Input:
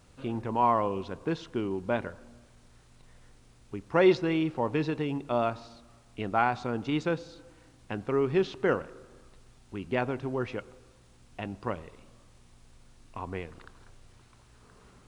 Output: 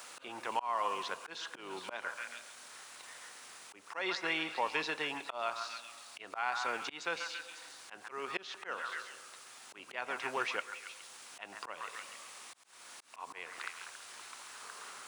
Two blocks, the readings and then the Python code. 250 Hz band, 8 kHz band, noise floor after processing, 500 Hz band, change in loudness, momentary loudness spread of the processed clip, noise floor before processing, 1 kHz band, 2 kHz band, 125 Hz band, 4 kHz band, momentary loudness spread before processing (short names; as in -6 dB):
-19.0 dB, n/a, -56 dBFS, -14.5 dB, -9.5 dB, 15 LU, -58 dBFS, -6.0 dB, 0.0 dB, -27.0 dB, +3.0 dB, 18 LU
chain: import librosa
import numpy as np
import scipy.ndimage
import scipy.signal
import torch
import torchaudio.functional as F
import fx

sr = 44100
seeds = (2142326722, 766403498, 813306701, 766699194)

p1 = fx.octave_divider(x, sr, octaves=1, level_db=-2.0)
p2 = fx.rider(p1, sr, range_db=4, speed_s=0.5)
p3 = p1 + F.gain(torch.from_numpy(p2), 1.0).numpy()
p4 = fx.high_shelf(p3, sr, hz=4900.0, db=8.0)
p5 = p4 + fx.echo_stepped(p4, sr, ms=138, hz=1300.0, octaves=0.7, feedback_pct=70, wet_db=-9, dry=0)
p6 = fx.auto_swell(p5, sr, attack_ms=329.0)
p7 = scipy.signal.sosfilt(scipy.signal.butter(2, 960.0, 'highpass', fs=sr, output='sos'), p6)
p8 = fx.band_squash(p7, sr, depth_pct=40)
y = F.gain(torch.from_numpy(p8), -1.0).numpy()